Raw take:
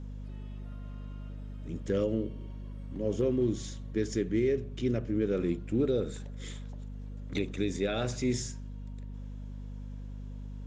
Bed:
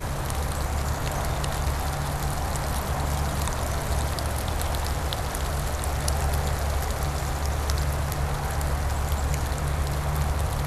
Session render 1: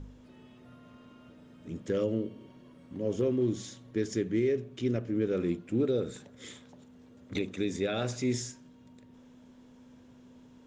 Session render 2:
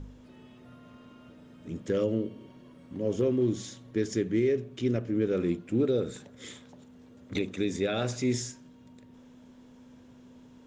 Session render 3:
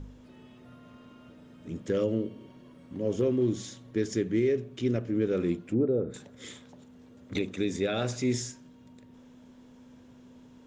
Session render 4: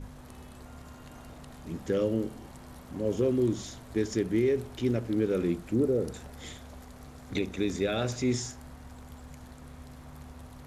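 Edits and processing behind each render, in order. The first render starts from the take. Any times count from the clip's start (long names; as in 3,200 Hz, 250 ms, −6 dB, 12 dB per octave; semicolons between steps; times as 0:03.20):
hum removal 50 Hz, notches 4
level +2 dB
0:05.69–0:06.14: treble cut that deepens with the level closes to 900 Hz, closed at −25.5 dBFS
mix in bed −22 dB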